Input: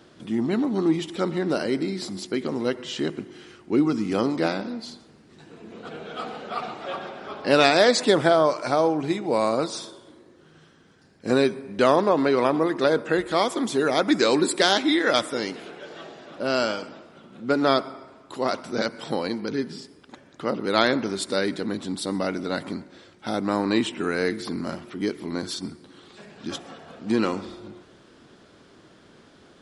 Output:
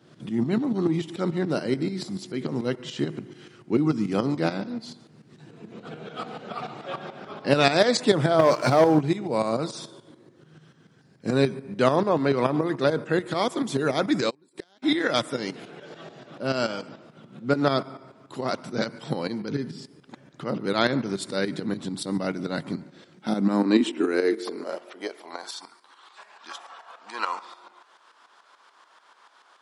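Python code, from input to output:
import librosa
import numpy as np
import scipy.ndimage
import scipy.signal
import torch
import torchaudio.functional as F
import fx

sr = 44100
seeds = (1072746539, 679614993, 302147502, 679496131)

y = fx.tremolo_shape(x, sr, shape='saw_up', hz=6.9, depth_pct=70)
y = fx.leveller(y, sr, passes=2, at=(8.39, 9.01))
y = fx.filter_sweep_highpass(y, sr, from_hz=130.0, to_hz=980.0, start_s=22.8, end_s=25.73, q=3.3)
y = fx.gate_flip(y, sr, shuts_db=-18.0, range_db=-37, at=(14.29, 14.82), fade=0.02)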